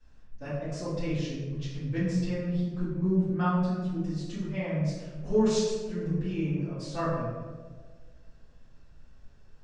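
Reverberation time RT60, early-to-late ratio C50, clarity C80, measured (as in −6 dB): 1.6 s, −0.5 dB, 2.0 dB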